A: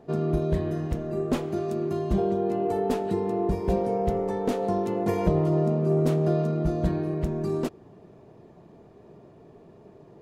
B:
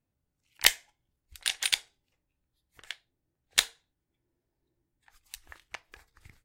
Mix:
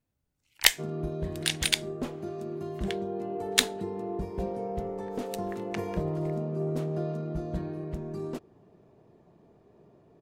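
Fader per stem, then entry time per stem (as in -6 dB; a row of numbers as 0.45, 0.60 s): -8.0, +1.0 dB; 0.70, 0.00 s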